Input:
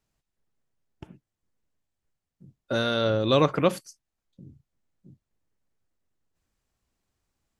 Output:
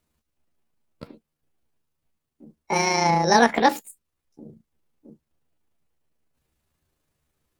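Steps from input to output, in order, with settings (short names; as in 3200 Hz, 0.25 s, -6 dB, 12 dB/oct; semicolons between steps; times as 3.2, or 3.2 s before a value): delay-line pitch shifter +7.5 st; gain +5 dB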